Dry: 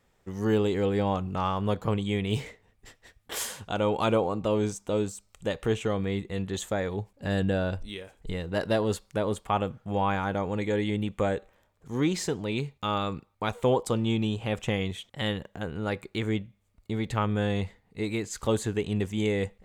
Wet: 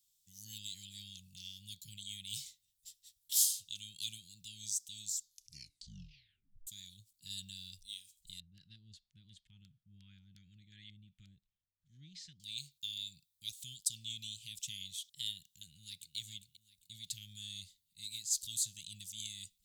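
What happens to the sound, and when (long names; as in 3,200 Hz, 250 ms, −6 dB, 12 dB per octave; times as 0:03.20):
0:05.04: tape stop 1.63 s
0:08.40–0:12.40: low-pass on a step sequencer 5.6 Hz 720–1,700 Hz
0:15.60–0:16.16: delay throw 400 ms, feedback 45%, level −10.5 dB
whole clip: dynamic equaliser 5,000 Hz, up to +5 dB, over −53 dBFS, Q 1.3; elliptic band-stop filter 160–3,600 Hz, stop band 60 dB; first-order pre-emphasis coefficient 0.97; level +4 dB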